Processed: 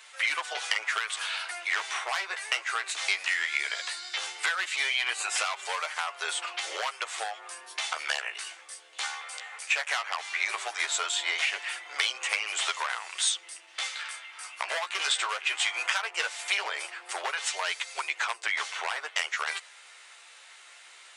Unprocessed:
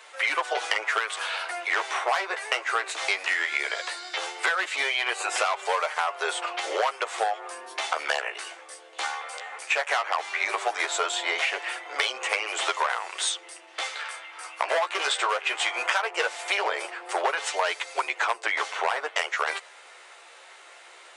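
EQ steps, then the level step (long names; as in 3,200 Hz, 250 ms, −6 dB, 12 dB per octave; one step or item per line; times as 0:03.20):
guitar amp tone stack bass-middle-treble 5-5-5
+7.5 dB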